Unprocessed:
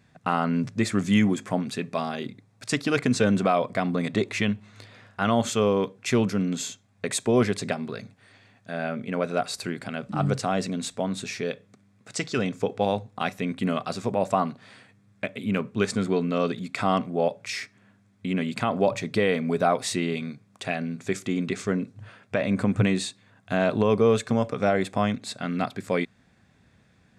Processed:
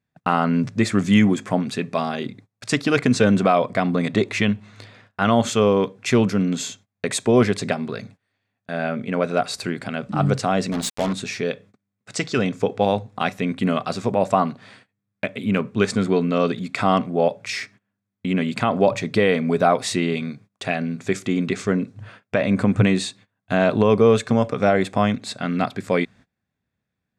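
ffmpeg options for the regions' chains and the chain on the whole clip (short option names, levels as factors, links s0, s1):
-filter_complex "[0:a]asettb=1/sr,asplit=3[s0][s1][s2];[s0]atrim=end=10.724[s3];[s1]atrim=start=10.72:end=11.13,asetpts=PTS-STARTPTS,afade=t=in:d=0.004:c=qsin,afade=t=out:st=0.406:d=0.004:c=qsin,highshelf=f=6100:g=7,bandreject=f=60:t=h:w=6,bandreject=f=120:t=h:w=6,bandreject=f=180:t=h:w=6,bandreject=f=240:t=h:w=6,bandreject=f=300:t=h:w=6,bandreject=f=360:t=h:w=6,bandreject=f=420:t=h:w=6,bandreject=f=480:t=h:w=6,bandreject=f=540:t=h:w=6,acrusher=bits=4:mix=0:aa=0.5[s4];[s2]atrim=start=11.126[s5];[s3][s4]acrossfade=d=0.004:c1=hsin:c2=qsin[s6];[s6][s5]acrossfade=d=0.004:c1=qsin:c2=hsin,agate=range=0.0562:threshold=0.00355:ratio=16:detection=peak,highshelf=f=8900:g=-6.5,volume=1.78"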